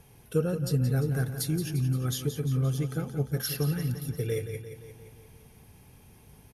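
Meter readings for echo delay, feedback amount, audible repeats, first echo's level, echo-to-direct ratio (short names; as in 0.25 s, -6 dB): 0.174 s, 59%, 6, -10.0 dB, -8.0 dB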